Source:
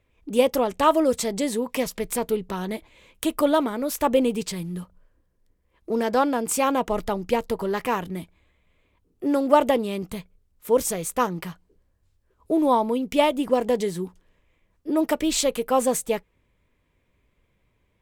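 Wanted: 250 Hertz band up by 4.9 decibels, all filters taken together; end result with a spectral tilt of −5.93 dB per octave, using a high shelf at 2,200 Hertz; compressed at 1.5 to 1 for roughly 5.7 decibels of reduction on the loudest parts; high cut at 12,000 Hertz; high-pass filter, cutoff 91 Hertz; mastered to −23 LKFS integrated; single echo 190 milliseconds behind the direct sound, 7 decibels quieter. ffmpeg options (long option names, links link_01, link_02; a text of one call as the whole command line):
ffmpeg -i in.wav -af "highpass=91,lowpass=12000,equalizer=frequency=250:width_type=o:gain=6,highshelf=frequency=2200:gain=-6,acompressor=threshold=-28dB:ratio=1.5,aecho=1:1:190:0.447,volume=3dB" out.wav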